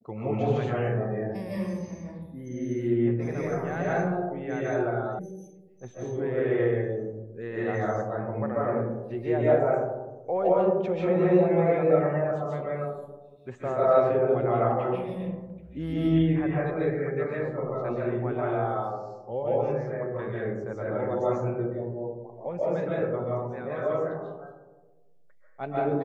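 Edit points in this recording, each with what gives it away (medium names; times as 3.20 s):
5.19 s: sound stops dead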